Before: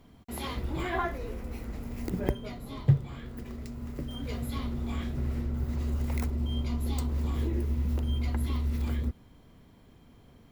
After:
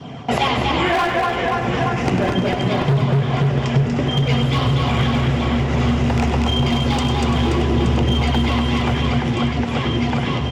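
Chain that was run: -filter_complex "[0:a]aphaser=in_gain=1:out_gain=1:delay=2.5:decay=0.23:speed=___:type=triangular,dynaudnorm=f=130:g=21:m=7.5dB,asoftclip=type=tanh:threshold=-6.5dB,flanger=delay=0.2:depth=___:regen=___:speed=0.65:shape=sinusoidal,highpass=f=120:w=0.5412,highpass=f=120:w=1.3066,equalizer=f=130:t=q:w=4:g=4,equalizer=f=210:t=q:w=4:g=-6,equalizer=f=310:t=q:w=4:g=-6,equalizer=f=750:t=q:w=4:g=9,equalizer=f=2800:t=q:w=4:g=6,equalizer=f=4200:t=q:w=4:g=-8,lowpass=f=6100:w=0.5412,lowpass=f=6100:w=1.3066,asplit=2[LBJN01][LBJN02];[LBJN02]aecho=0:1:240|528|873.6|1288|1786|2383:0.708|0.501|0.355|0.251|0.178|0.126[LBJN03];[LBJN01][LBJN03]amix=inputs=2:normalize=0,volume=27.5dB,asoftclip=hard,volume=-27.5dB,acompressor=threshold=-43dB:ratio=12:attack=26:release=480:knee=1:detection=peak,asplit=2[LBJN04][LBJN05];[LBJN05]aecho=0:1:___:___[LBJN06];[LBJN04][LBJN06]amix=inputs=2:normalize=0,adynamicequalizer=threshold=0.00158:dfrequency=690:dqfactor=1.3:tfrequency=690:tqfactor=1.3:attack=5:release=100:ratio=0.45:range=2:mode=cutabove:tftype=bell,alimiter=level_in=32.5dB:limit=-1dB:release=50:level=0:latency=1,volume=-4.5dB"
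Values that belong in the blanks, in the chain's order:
1.8, 3.4, -45, 99, 0.376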